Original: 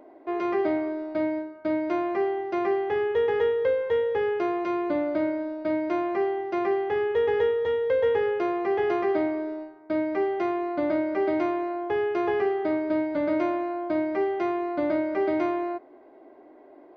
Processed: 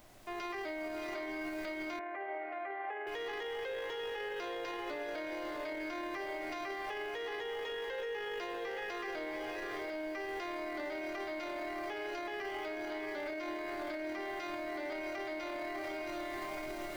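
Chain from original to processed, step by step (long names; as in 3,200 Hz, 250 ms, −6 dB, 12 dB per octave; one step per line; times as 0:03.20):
first difference
feedback delay with all-pass diffusion 675 ms, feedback 40%, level −4.5 dB
background noise pink −69 dBFS
automatic gain control gain up to 14 dB
on a send at −12 dB: convolution reverb, pre-delay 3 ms
on the sum: brickwall limiter −39.5 dBFS, peak gain reduction 21.5 dB
0:01.99–0:03.07: loudspeaker in its box 470–2,100 Hz, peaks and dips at 530 Hz +5 dB, 750 Hz +4 dB, 1,100 Hz −5 dB
level +7 dB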